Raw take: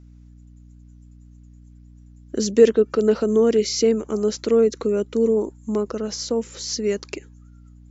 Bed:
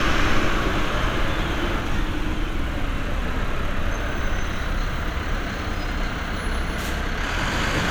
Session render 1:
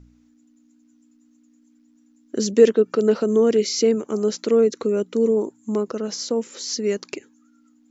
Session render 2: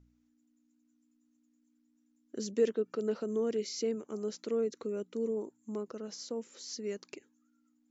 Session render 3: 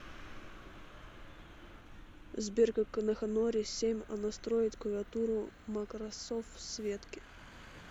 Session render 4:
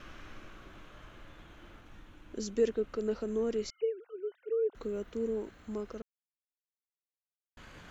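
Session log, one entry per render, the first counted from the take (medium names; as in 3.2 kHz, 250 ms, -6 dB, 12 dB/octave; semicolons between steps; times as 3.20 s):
de-hum 60 Hz, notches 3
trim -15 dB
add bed -29.5 dB
3.70–4.75 s: formants replaced by sine waves; 6.02–7.57 s: mute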